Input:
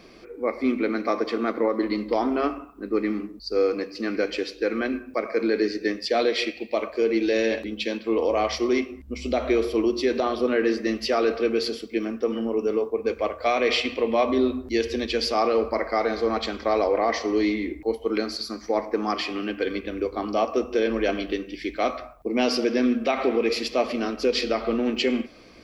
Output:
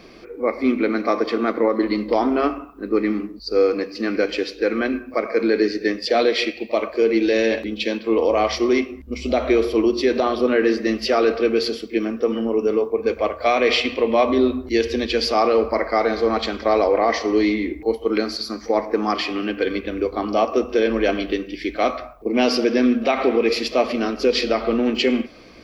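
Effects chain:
parametric band 8,600 Hz −5.5 dB 0.7 octaves
echo ahead of the sound 37 ms −21 dB
level +4.5 dB

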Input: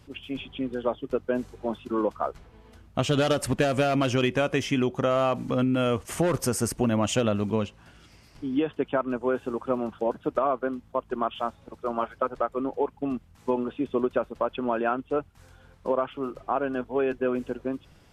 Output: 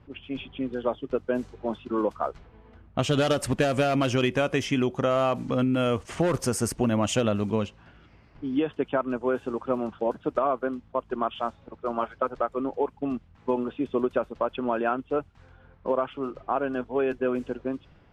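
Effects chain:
low-pass that shuts in the quiet parts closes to 1,900 Hz, open at −21.5 dBFS

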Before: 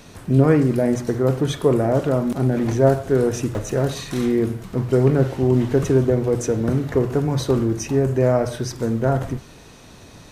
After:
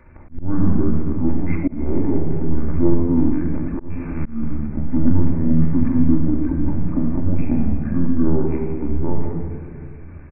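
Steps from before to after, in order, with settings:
linear-prediction vocoder at 8 kHz pitch kept
pitch shifter −8 semitones
rectangular room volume 3,700 cubic metres, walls mixed, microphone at 2.5 metres
volume swells 278 ms
level −4.5 dB

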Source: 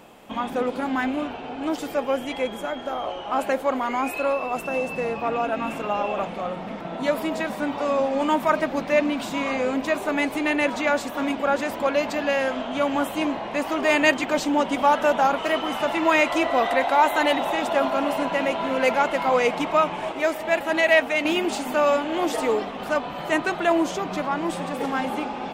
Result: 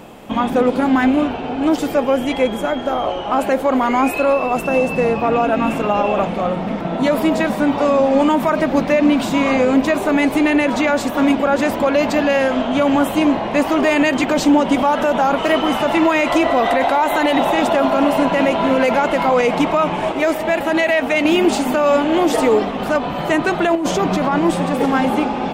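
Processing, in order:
brickwall limiter −15.5 dBFS, peak gain reduction 9.5 dB
low-shelf EQ 420 Hz +7 dB
0:23.75–0:24.39: compressor whose output falls as the input rises −24 dBFS, ratio −1
level +7 dB

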